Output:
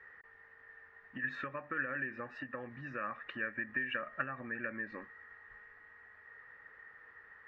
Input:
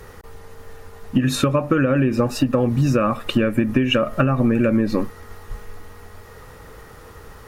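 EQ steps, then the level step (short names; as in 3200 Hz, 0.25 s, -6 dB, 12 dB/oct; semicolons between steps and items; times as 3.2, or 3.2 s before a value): band-pass 1800 Hz, Q 11; air absorption 130 m; tilt -2.5 dB/oct; +4.0 dB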